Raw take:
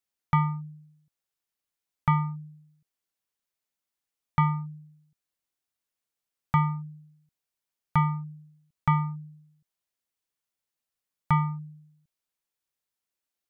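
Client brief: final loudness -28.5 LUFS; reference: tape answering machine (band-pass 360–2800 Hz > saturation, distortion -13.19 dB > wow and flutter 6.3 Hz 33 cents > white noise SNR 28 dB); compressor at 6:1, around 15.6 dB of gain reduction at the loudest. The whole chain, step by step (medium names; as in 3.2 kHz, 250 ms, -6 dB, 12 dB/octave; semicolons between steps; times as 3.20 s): compression 6:1, threshold -36 dBFS; band-pass 360–2800 Hz; saturation -29.5 dBFS; wow and flutter 6.3 Hz 33 cents; white noise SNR 28 dB; trim +19 dB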